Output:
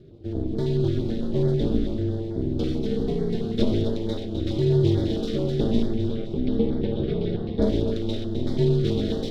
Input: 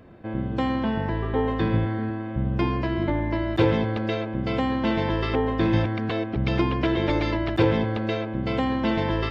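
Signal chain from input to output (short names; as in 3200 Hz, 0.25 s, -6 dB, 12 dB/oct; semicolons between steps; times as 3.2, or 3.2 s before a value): minimum comb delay 0.54 ms; 5.94–7.62 air absorption 340 m; flange 0.42 Hz, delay 3.7 ms, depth 5.1 ms, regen +40%; ten-band EQ 125 Hz +7 dB, 250 Hz +10 dB, 500 Hz +4 dB, 1000 Hz -9 dB, 2000 Hz -8 dB, 4000 Hz +11 dB; ring modulator 120 Hz; split-band echo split 450 Hz, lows 98 ms, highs 0.258 s, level -8 dB; stepped notch 9.1 Hz 910–2700 Hz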